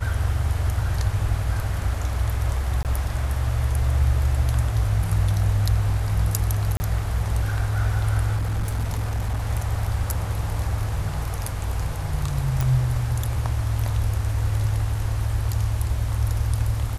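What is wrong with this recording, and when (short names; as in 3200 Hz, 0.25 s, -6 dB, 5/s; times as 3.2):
2.83–2.85 gap 18 ms
6.77–6.8 gap 30 ms
8.36–9.47 clipped -20.5 dBFS
12.61 pop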